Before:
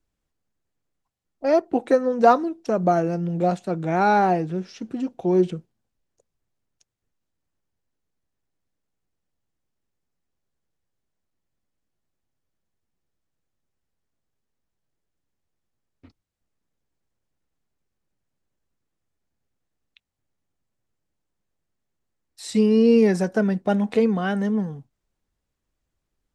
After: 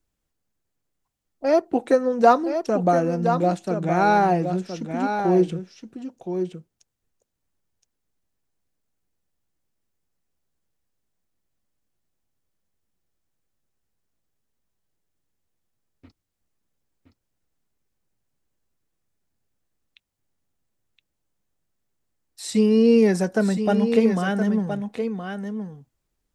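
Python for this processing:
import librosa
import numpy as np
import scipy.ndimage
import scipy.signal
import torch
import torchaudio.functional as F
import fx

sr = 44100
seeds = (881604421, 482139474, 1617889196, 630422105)

p1 = fx.high_shelf(x, sr, hz=7000.0, db=6.0)
y = p1 + fx.echo_single(p1, sr, ms=1019, db=-7.5, dry=0)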